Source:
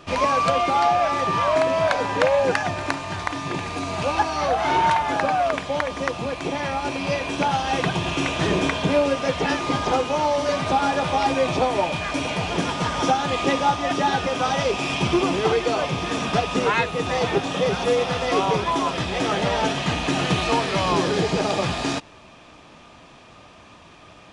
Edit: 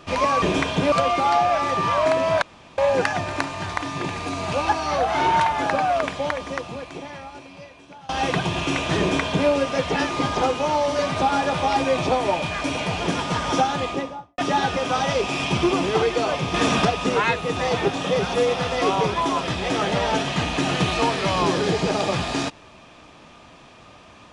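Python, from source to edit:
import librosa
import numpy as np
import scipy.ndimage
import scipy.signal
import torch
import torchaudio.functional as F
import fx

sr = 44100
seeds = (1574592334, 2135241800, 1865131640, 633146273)

y = fx.studio_fade_out(x, sr, start_s=13.16, length_s=0.72)
y = fx.edit(y, sr, fx.room_tone_fill(start_s=1.92, length_s=0.36),
    fx.fade_out_to(start_s=5.66, length_s=1.93, curve='qua', floor_db=-22.5),
    fx.duplicate(start_s=8.49, length_s=0.5, to_s=0.42),
    fx.clip_gain(start_s=16.04, length_s=0.31, db=5.5), tone=tone)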